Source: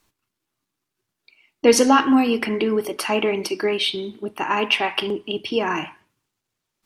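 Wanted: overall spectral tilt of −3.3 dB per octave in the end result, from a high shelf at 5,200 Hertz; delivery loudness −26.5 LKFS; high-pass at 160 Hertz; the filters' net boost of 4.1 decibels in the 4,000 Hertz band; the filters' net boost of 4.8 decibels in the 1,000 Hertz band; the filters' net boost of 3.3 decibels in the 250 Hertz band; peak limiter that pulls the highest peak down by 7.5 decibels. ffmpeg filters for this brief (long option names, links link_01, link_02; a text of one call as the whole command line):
ffmpeg -i in.wav -af "highpass=160,equalizer=frequency=250:width_type=o:gain=4,equalizer=frequency=1000:width_type=o:gain=5.5,equalizer=frequency=4000:width_type=o:gain=7.5,highshelf=frequency=5200:gain=-4.5,volume=-7dB,alimiter=limit=-14.5dB:level=0:latency=1" out.wav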